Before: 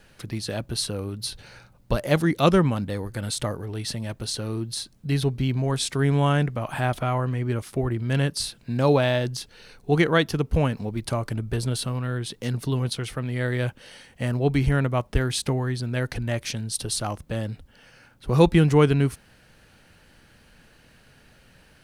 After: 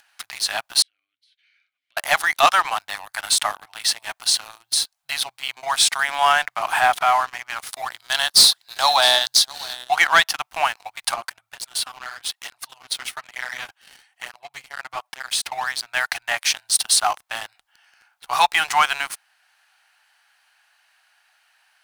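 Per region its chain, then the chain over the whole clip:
0:00.82–0:01.97: downward compressor, threshold −33 dBFS + formant filter i
0:04.38–0:05.63: de-essing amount 25% + parametric band 1,600 Hz −3 dB 1.7 octaves
0:07.72–0:09.90: high shelf with overshoot 3,100 Hz +6 dB, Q 3 + single-tap delay 658 ms −19 dB
0:11.14–0:15.52: downward compressor, threshold −26 dBFS + through-zero flanger with one copy inverted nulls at 1.1 Hz, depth 7.3 ms
whole clip: elliptic high-pass filter 730 Hz, stop band 40 dB; upward compression, threshold −52 dBFS; leveller curve on the samples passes 3; level +1.5 dB

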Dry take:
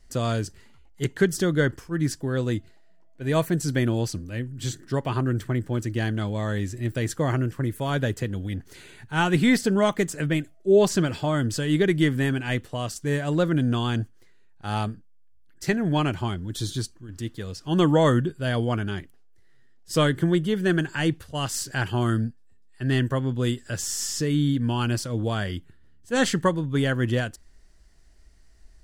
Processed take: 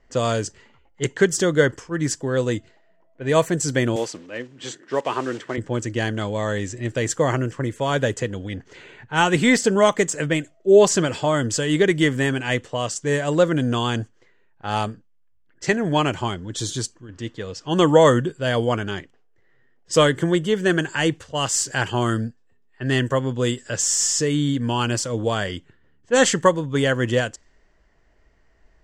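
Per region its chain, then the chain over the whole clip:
0:03.96–0:05.58: one scale factor per block 5 bits + high-pass filter 290 Hz + dynamic equaliser 6,700 Hz, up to −7 dB, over −49 dBFS, Q 1.1
whole clip: flat-topped bell 4,700 Hz +13 dB; low-pass that shuts in the quiet parts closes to 2,100 Hz, open at −19.5 dBFS; graphic EQ with 10 bands 125 Hz +5 dB, 250 Hz +4 dB, 500 Hz +12 dB, 1,000 Hz +9 dB, 2,000 Hz +11 dB, 4,000 Hz −8 dB, 8,000 Hz +7 dB; level −6.5 dB

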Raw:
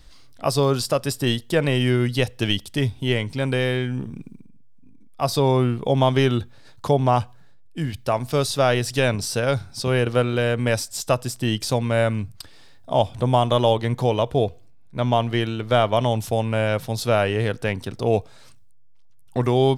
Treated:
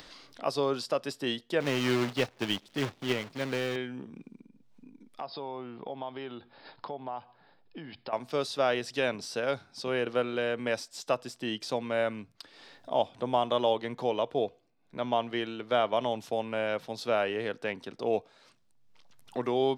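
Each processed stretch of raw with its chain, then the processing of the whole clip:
0:01.60–0:03.76: low-shelf EQ 190 Hz +10.5 dB + log-companded quantiser 4 bits + expander for the loud parts, over −26 dBFS
0:05.21–0:08.13: linear-phase brick-wall low-pass 5,300 Hz + parametric band 830 Hz +7 dB 0.67 octaves + downward compressor 3 to 1, threshold −30 dBFS
whole clip: three-way crossover with the lows and the highs turned down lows −24 dB, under 200 Hz, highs −14 dB, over 5,700 Hz; upward compression, threshold −31 dBFS; level −7.5 dB

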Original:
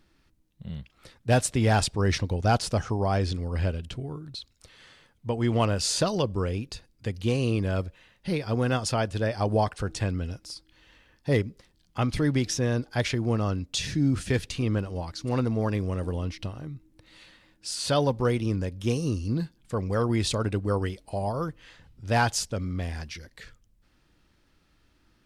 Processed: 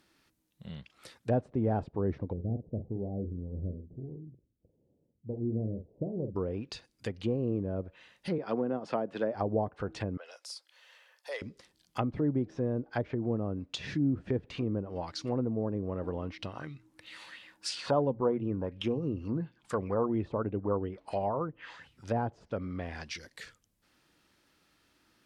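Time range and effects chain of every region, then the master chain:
0:02.33–0:06.36: Gaussian smoothing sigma 21 samples + double-tracking delay 45 ms −8.5 dB
0:08.38–0:09.35: high-pass filter 170 Hz 24 dB per octave + de-essing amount 50%
0:10.17–0:11.42: Chebyshev high-pass filter 520 Hz, order 4 + downward compressor 1.5 to 1, threshold −46 dBFS
0:16.55–0:22.05: mains-hum notches 60/120 Hz + auto-filter bell 2.9 Hz 890–3,100 Hz +14 dB
whole clip: treble cut that deepens with the level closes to 500 Hz, closed at −22.5 dBFS; high-pass filter 290 Hz 6 dB per octave; high-shelf EQ 9,600 Hz +7.5 dB

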